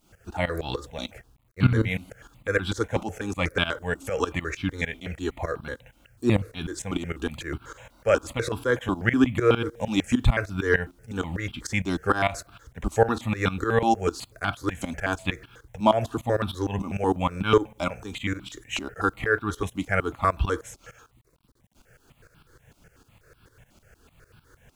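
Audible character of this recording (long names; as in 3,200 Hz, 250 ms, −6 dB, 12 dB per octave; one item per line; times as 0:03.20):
tremolo saw up 6.6 Hz, depth 90%
a quantiser's noise floor 12 bits, dither none
notches that jump at a steady rate 8.1 Hz 460–1,900 Hz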